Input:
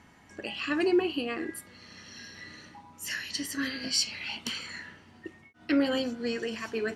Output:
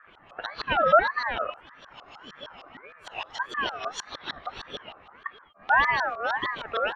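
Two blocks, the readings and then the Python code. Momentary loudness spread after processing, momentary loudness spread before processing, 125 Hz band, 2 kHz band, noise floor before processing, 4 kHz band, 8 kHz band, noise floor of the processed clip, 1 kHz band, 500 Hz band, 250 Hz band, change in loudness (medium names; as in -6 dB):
23 LU, 21 LU, +2.5 dB, +8.5 dB, -57 dBFS, -2.5 dB, -11.0 dB, -54 dBFS, +16.5 dB, +2.5 dB, -15.0 dB, +4.5 dB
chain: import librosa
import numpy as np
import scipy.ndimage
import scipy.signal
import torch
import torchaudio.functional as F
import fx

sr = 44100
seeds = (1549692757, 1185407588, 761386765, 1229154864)

y = fx.filter_lfo_lowpass(x, sr, shape='saw_up', hz=6.5, low_hz=290.0, high_hz=2800.0, q=1.7)
y = fx.ring_lfo(y, sr, carrier_hz=1200.0, swing_pct=25, hz=1.7)
y = F.gain(torch.from_numpy(y), 5.5).numpy()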